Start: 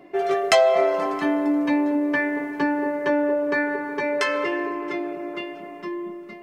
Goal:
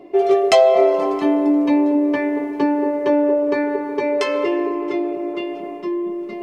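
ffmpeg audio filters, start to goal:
-af "highshelf=f=5.7k:g=-7.5,areverse,acompressor=mode=upward:threshold=-29dB:ratio=2.5,areverse,equalizer=f=160:t=o:w=0.67:g=-6,equalizer=f=400:t=o:w=0.67:g=5,equalizer=f=1.6k:t=o:w=0.67:g=-12,volume=4.5dB"

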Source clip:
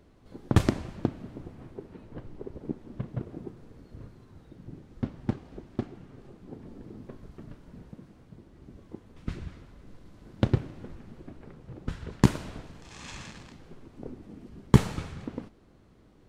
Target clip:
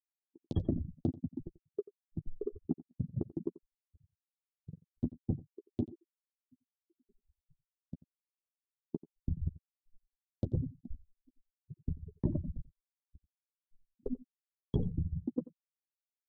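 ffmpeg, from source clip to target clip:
-filter_complex "[0:a]afftfilt=real='re*gte(hypot(re,im),0.0794)':imag='im*gte(hypot(re,im),0.0794)':win_size=1024:overlap=0.75,agate=range=-24dB:threshold=-45dB:ratio=16:detection=peak,firequalizer=gain_entry='entry(460,0);entry(1500,-23);entry(3500,12)':delay=0.05:min_phase=1,areverse,acompressor=threshold=-42dB:ratio=5,areverse,asplit=2[a][b];[b]adelay=12,volume=-9.5dB[c];[a][c]amix=inputs=2:normalize=0,asplit=2[d][e];[e]aecho=0:1:88:0.112[f];[d][f]amix=inputs=2:normalize=0,volume=10dB"

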